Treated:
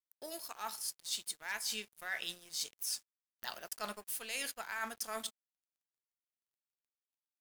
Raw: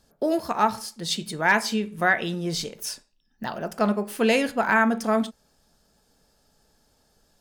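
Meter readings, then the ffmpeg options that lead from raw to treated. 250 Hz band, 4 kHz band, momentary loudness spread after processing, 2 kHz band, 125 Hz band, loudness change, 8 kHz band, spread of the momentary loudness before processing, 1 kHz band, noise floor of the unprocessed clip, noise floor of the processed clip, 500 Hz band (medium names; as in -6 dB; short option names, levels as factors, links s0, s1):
-29.5 dB, -8.5 dB, 7 LU, -17.5 dB, -31.5 dB, -15.5 dB, -4.0 dB, 12 LU, -20.5 dB, -66 dBFS, under -85 dBFS, -23.5 dB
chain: -af "aderivative,areverse,acompressor=threshold=0.00794:ratio=8,areverse,aeval=exprs='sgn(val(0))*max(abs(val(0))-0.00106,0)':c=same,dynaudnorm=f=410:g=3:m=1.58,volume=1.41"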